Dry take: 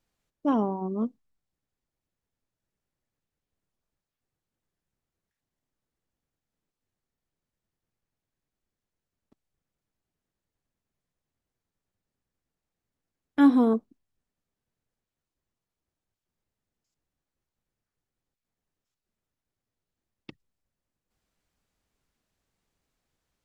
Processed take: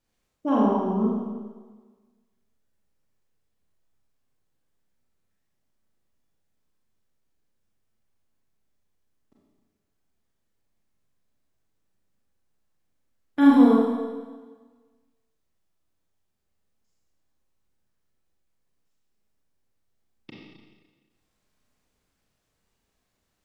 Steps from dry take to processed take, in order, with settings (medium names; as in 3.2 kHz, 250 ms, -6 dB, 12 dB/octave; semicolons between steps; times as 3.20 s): Schroeder reverb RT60 1.4 s, combs from 29 ms, DRR -5 dB; trim -1.5 dB